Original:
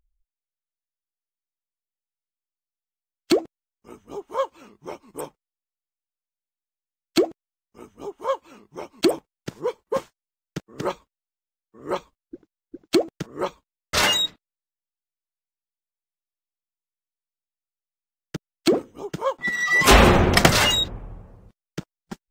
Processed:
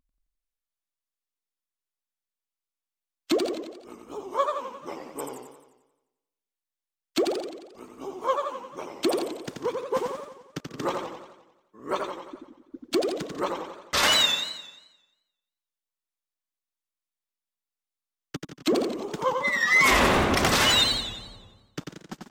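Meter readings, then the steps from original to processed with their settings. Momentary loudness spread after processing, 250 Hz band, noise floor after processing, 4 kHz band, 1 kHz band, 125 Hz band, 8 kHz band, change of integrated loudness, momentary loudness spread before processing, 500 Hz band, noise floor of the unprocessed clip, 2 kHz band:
22 LU, -4.5 dB, under -85 dBFS, -0.5 dB, -2.0 dB, -9.5 dB, -3.0 dB, -3.0 dB, 23 LU, -3.5 dB, under -85 dBFS, -1.5 dB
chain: peak limiter -11.5 dBFS, peak gain reduction 9.5 dB; bass shelf 340 Hz -7 dB; delay 144 ms -14 dB; vibrato 3.2 Hz 76 cents; small resonant body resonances 260/1100/3600 Hz, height 6 dB; modulated delay 88 ms, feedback 55%, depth 143 cents, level -4.5 dB; trim -1 dB

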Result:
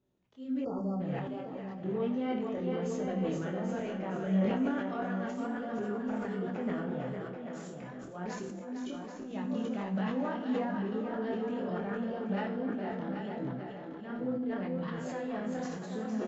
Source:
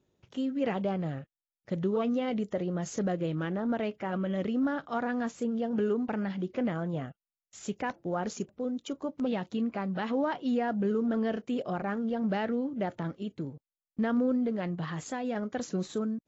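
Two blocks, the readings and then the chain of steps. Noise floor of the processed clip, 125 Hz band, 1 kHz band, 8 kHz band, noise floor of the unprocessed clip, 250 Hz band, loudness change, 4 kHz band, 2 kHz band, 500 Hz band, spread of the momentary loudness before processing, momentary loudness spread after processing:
-44 dBFS, -2.0 dB, -3.5 dB, no reading, under -85 dBFS, -3.0 dB, -3.5 dB, -5.0 dB, -3.5 dB, -3.0 dB, 8 LU, 8 LU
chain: treble shelf 5.6 kHz -10.5 dB; on a send: two-band feedback delay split 320 Hz, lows 113 ms, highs 461 ms, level -5.5 dB; on the sum: peak limiter -23.5 dBFS, peak gain reduction 7 dB; slow attack 174 ms; feedback comb 64 Hz, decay 0.63 s, harmonics all, mix 80%; chorus voices 2, 1.3 Hz, delay 25 ms, depth 3 ms; spectral selection erased 0.65–1.00 s, 1.4–4.4 kHz; delay 785 ms -8 dB; decay stretcher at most 33 dB/s; trim +7 dB

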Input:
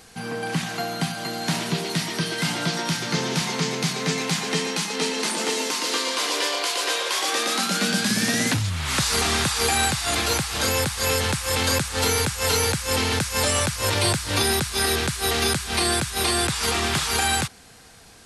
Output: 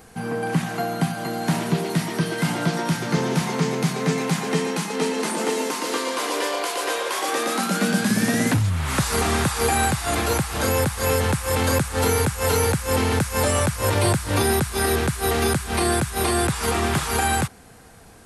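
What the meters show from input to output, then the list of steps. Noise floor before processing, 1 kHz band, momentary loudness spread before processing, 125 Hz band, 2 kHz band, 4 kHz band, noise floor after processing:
-48 dBFS, +2.5 dB, 5 LU, +4.5 dB, -1.0 dB, -6.0 dB, -46 dBFS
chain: peaking EQ 4.4 kHz -11.5 dB 2.3 oct; trim +4.5 dB

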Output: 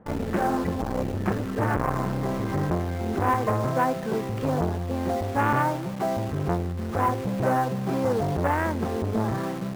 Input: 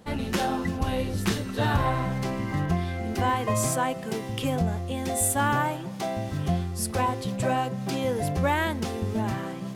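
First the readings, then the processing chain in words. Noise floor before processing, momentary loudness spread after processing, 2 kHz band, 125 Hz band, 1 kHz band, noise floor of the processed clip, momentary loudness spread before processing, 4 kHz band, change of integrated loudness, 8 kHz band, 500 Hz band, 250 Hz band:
-35 dBFS, 5 LU, -1.0 dB, +0.5 dB, +2.0 dB, -32 dBFS, 6 LU, -7.5 dB, +1.0 dB, -13.5 dB, +3.0 dB, +1.5 dB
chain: low-pass 1.7 kHz 24 dB/octave; dynamic bell 410 Hz, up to +3 dB, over -44 dBFS, Q 5.3; in parallel at -4 dB: bit crusher 6-bit; on the sum: transformer saturation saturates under 640 Hz

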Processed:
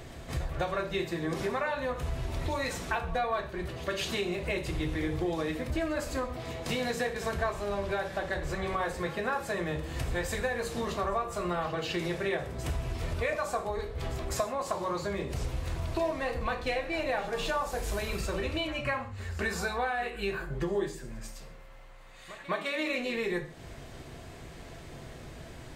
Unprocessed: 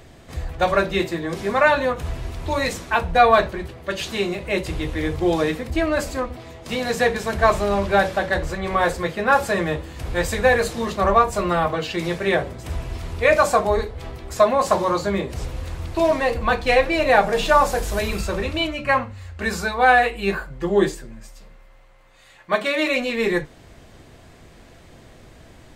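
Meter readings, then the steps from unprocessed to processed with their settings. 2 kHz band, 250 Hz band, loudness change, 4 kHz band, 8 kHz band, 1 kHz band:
-12.0 dB, -10.0 dB, -12.0 dB, -9.0 dB, -8.0 dB, -14.0 dB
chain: compression 6:1, threshold -30 dBFS, peak gain reduction 19.5 dB; pre-echo 207 ms -16 dB; gated-style reverb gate 170 ms falling, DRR 7.5 dB

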